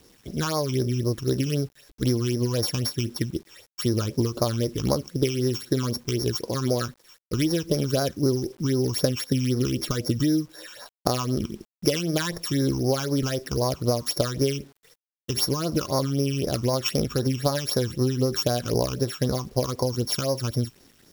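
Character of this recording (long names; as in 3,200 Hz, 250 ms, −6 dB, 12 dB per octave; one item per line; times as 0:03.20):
a buzz of ramps at a fixed pitch in blocks of 8 samples
phaser sweep stages 8, 3.9 Hz, lowest notch 540–3,000 Hz
a quantiser's noise floor 10 bits, dither none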